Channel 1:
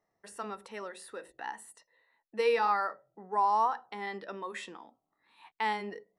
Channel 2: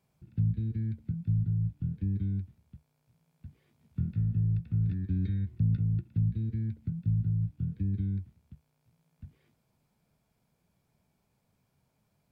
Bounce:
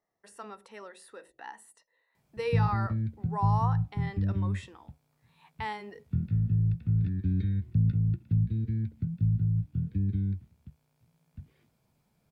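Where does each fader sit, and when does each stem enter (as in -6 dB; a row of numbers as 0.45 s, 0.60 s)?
-4.5 dB, +2.0 dB; 0.00 s, 2.15 s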